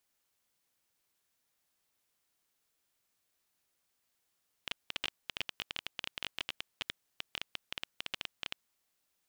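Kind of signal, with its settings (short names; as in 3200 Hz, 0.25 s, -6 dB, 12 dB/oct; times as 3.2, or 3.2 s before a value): random clicks 14/s -18 dBFS 4.06 s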